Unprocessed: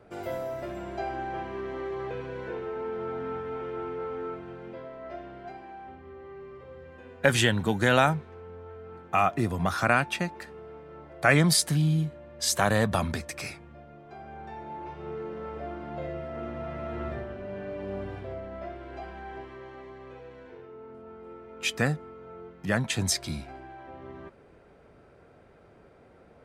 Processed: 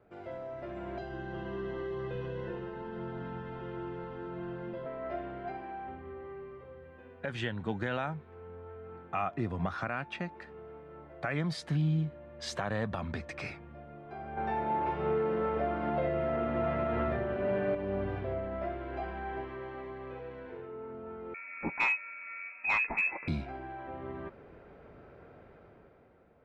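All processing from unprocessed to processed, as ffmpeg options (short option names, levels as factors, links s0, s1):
-filter_complex "[0:a]asettb=1/sr,asplit=3[s0][s1][s2];[s0]atrim=end=0.984[s3];[s1]atrim=start=0.98:end=4.86,asetpts=PTS-STARTPTS,afade=t=in:d=0.004:c=qsin,afade=t=out:st=3.876:d=0.004:c=qsin,acrossover=split=240|3000[s4][s5][s6];[s5]acompressor=threshold=0.00631:ratio=3:attack=3.2:release=140:knee=2.83:detection=peak[s7];[s4][s7][s6]amix=inputs=3:normalize=0,asuperstop=centerf=2300:order=4:qfactor=6,aecho=1:1:5.7:0.53,atrim=end_sample=171108[s8];[s2]atrim=start=4.856[s9];[s3][s8]acrossfade=d=0.004:c1=hsin:c2=qsin[s10];[s10][s9]acrossfade=d=0.004:c1=qsin:c2=hsin,asettb=1/sr,asplit=3[s11][s12][s13];[s11]atrim=end=14.374[s14];[s12]atrim=start=14.37:end=17.75,asetpts=PTS-STARTPTS,afade=t=in:d=0.004:c=qsin,afade=t=out:st=3.376:d=0.004:c=qsin,highpass=85,bandreject=f=50:t=h:w=6,bandreject=f=100:t=h:w=6,bandreject=f=150:t=h:w=6,bandreject=f=200:t=h:w=6,bandreject=f=250:t=h:w=6,bandreject=f=300:t=h:w=6,bandreject=f=350:t=h:w=6,bandreject=f=400:t=h:w=6,acontrast=78[s15];[s13]atrim=start=17.746[s16];[s14][s15]acrossfade=d=0.004:c1=hsin:c2=qsin[s17];[s17][s16]acrossfade=d=0.004:c1=qsin:c2=hsin,asettb=1/sr,asplit=3[s18][s19][s20];[s18]atrim=end=21.344[s21];[s19]atrim=start=21.34:end=23.28,asetpts=PTS-STARTPTS,afade=t=in:d=0.004:c=qsin,afade=t=out:st=1.936:d=0.004:c=qsin,lowpass=f=2300:t=q:w=0.5098,lowpass=f=2300:t=q:w=0.6013,lowpass=f=2300:t=q:w=0.9,lowpass=f=2300:t=q:w=2.563,afreqshift=-2700,asoftclip=type=hard:threshold=0.075[s22];[s20]atrim=start=23.276[s23];[s21][s22]acrossfade=d=0.004:c1=hsin:c2=qsin[s24];[s24][s23]acrossfade=d=0.004:c1=qsin:c2=hsin,lowpass=2900,dynaudnorm=f=170:g=11:m=3.76,alimiter=limit=0.224:level=0:latency=1:release=381,volume=0.355"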